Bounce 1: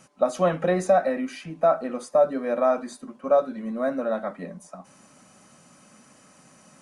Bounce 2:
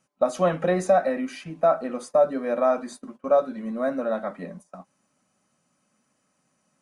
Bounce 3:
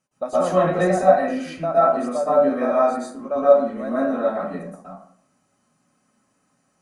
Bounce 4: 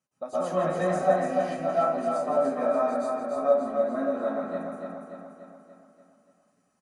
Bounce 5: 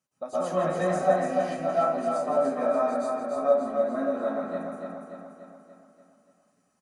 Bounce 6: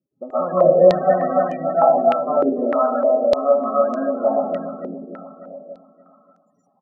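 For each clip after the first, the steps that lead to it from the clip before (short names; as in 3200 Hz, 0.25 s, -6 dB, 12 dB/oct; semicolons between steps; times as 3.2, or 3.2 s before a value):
gate -42 dBFS, range -17 dB
plate-style reverb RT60 0.58 s, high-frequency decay 0.5×, pre-delay 0.105 s, DRR -9.5 dB; gain -6 dB
HPF 46 Hz; on a send: feedback echo 0.29 s, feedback 55%, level -4.5 dB; on the sum: gain -8.5 dB
bell 6900 Hz +2 dB 1.8 oct
loudest bins only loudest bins 32; stepped low-pass 3.3 Hz 380–6200 Hz; gain +5.5 dB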